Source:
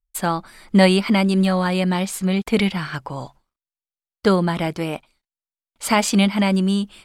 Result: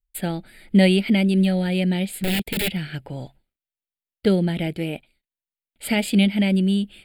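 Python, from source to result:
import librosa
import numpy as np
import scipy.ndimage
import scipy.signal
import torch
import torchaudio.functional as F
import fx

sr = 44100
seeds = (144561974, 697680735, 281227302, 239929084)

y = fx.overflow_wrap(x, sr, gain_db=15.5, at=(2.15, 2.75), fade=0.02)
y = fx.fixed_phaser(y, sr, hz=2600.0, stages=4)
y = fx.dynamic_eq(y, sr, hz=1300.0, q=1.2, threshold_db=-40.0, ratio=4.0, max_db=-5)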